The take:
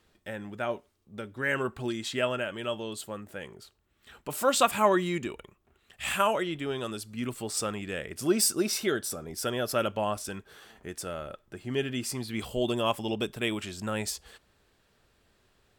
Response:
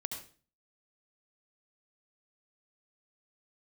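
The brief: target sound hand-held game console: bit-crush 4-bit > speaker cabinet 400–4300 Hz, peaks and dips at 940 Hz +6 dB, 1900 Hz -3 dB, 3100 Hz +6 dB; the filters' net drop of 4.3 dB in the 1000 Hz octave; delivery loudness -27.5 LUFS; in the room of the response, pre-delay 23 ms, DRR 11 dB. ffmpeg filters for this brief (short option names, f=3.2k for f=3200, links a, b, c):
-filter_complex "[0:a]equalizer=f=1k:t=o:g=-8.5,asplit=2[a][b];[1:a]atrim=start_sample=2205,adelay=23[c];[b][c]afir=irnorm=-1:irlink=0,volume=-11dB[d];[a][d]amix=inputs=2:normalize=0,acrusher=bits=3:mix=0:aa=0.000001,highpass=400,equalizer=f=940:t=q:w=4:g=6,equalizer=f=1.9k:t=q:w=4:g=-3,equalizer=f=3.1k:t=q:w=4:g=6,lowpass=f=4.3k:w=0.5412,lowpass=f=4.3k:w=1.3066,volume=4dB"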